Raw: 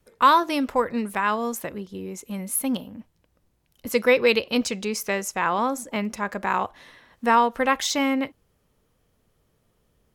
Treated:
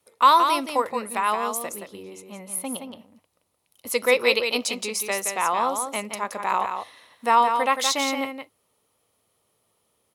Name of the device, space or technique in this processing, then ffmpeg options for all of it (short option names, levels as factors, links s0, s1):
filter by subtraction: -filter_complex "[0:a]equalizer=f=100:t=o:w=0.33:g=8,equalizer=f=1600:t=o:w=0.33:g=-10,equalizer=f=4000:t=o:w=0.33:g=3,equalizer=f=10000:t=o:w=0.33:g=11,asplit=2[s0][s1];[s1]lowpass=960,volume=-1[s2];[s0][s2]amix=inputs=2:normalize=0,asettb=1/sr,asplit=3[s3][s4][s5];[s3]atrim=end=2.034[s6];[s4]atrim=start=2.03:end=2.98,asetpts=PTS-STARTPTS,afade=t=in:d=0.004:c=qsin,afade=t=out:st=0.946:d=0.004:c=qsin,lowpass=f=2600:p=1[s7];[s5]atrim=start=2.976[s8];[s6][s7]acrossfade=d=0.004:c1=hsin:c2=qsin[s9];[s9][s8]acrossfade=d=0.004:c1=qsin:c2=hsin,aecho=1:1:172:0.473"